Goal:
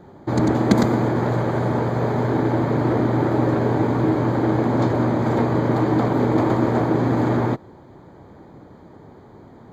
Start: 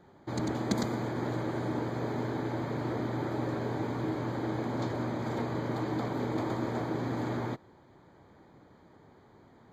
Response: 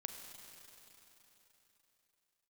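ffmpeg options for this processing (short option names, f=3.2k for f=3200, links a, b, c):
-filter_complex "[0:a]asettb=1/sr,asplit=3[a][b][c];[a]atrim=end=1.184[d];[b]atrim=start=1.18:end=2.3,asetpts=PTS-STARTPTS,afade=t=in:d=0.004:c=qsin,afade=t=out:st=1.116:d=0.004:c=qsin,equalizer=f=300:w=3.4:g=-8[e];[c]atrim=start=2.296[f];[d][e]acrossfade=d=0.004:c1=hsin:c2=qsin[g];[g][f]acrossfade=d=0.004:c1=qsin:c2=hsin,asplit=2[h][i];[i]adynamicsmooth=sensitivity=4:basefreq=1.4k,volume=1dB[j];[h][j]amix=inputs=2:normalize=0,volume=7.5dB"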